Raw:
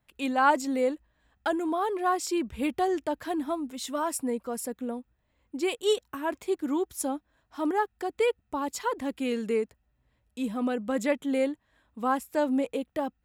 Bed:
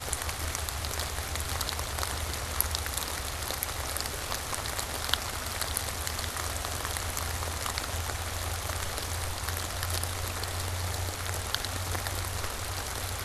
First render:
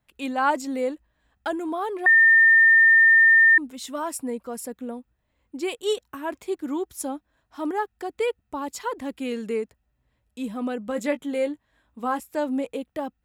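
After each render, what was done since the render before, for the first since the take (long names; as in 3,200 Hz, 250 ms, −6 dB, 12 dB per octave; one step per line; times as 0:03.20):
0:02.06–0:03.58: beep over 1,810 Hz −11.5 dBFS
0:10.86–0:12.20: double-tracking delay 17 ms −9 dB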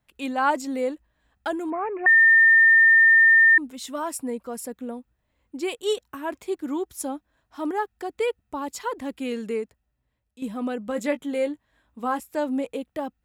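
0:01.70–0:02.74: bad sample-rate conversion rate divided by 8×, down none, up filtered
0:09.41–0:10.42: fade out, to −10.5 dB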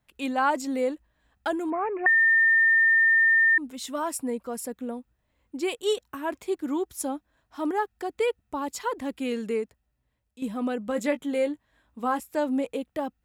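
downward compressor, threshold −18 dBFS, peak gain reduction 5 dB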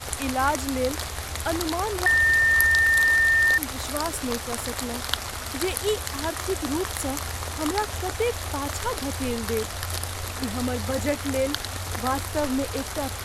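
mix in bed +1.5 dB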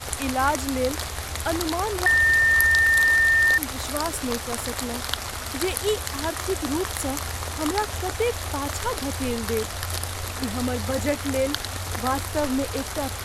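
level +1 dB
brickwall limiter −3 dBFS, peak gain reduction 2.5 dB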